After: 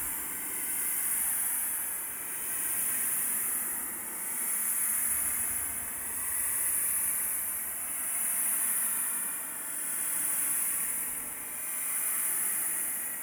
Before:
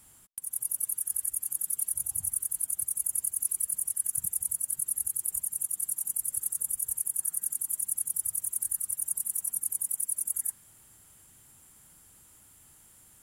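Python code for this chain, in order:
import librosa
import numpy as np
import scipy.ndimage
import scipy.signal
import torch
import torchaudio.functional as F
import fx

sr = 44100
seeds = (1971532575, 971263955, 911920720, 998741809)

p1 = np.flip(x).copy()
p2 = fx.quant_companded(p1, sr, bits=2)
p3 = p1 + F.gain(torch.from_numpy(p2), 0.5).numpy()
p4 = fx.graphic_eq(p3, sr, hz=(125, 250, 500, 1000, 2000, 4000, 8000), db=(-11, 9, -9, 3, 11, -7, -4))
p5 = 10.0 ** (-21.0 / 20.0) * np.tanh(p4 / 10.0 ** (-21.0 / 20.0))
p6 = scipy.signal.sosfilt(scipy.signal.butter(2, 50.0, 'highpass', fs=sr, output='sos'), p5)
p7 = fx.peak_eq(p6, sr, hz=4300.0, db=-12.5, octaves=0.78)
p8 = p7 + fx.echo_banded(p7, sr, ms=741, feedback_pct=75, hz=510.0, wet_db=-4.0, dry=0)
p9 = fx.transient(p8, sr, attack_db=0, sustain_db=7)
p10 = fx.paulstretch(p9, sr, seeds[0], factor=20.0, window_s=0.1, from_s=7.89)
y = F.gain(torch.from_numpy(p10), -1.5).numpy()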